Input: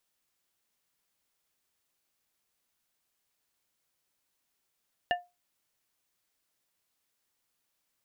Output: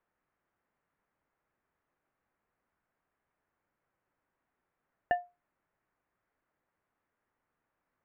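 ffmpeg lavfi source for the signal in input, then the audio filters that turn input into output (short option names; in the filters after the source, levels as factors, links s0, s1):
-f lavfi -i "aevalsrc='0.0794*pow(10,-3*t/0.23)*sin(2*PI*709*t)+0.0562*pow(10,-3*t/0.121)*sin(2*PI*1772.5*t)+0.0398*pow(10,-3*t/0.087)*sin(2*PI*2836*t)':d=0.89:s=44100"
-filter_complex "[0:a]lowpass=f=1800:w=0.5412,lowpass=f=1800:w=1.3066,asplit=2[s0][s1];[s1]alimiter=level_in=2:limit=0.0631:level=0:latency=1:release=118,volume=0.501,volume=0.891[s2];[s0][s2]amix=inputs=2:normalize=0"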